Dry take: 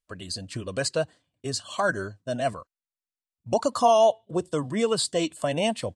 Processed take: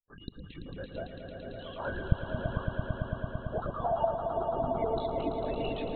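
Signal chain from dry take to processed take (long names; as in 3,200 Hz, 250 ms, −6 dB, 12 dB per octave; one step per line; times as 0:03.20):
transient designer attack −2 dB, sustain +10 dB
multi-voice chorus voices 6, 0.39 Hz, delay 18 ms, depth 2.6 ms
gate on every frequency bin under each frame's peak −15 dB strong
linear-prediction vocoder at 8 kHz whisper
on a send: echo that builds up and dies away 112 ms, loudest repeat 5, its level −8 dB
on the sum: level −8.5 dB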